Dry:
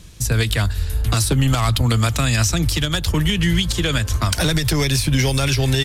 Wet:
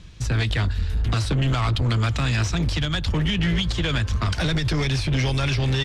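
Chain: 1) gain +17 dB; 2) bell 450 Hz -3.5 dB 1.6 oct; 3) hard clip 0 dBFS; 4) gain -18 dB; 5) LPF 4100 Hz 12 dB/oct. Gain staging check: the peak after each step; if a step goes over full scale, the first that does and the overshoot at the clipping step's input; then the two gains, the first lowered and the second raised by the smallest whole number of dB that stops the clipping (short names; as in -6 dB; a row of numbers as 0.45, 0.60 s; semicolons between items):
+9.5, +9.0, 0.0, -18.0, -17.0 dBFS; step 1, 9.0 dB; step 1 +8 dB, step 4 -9 dB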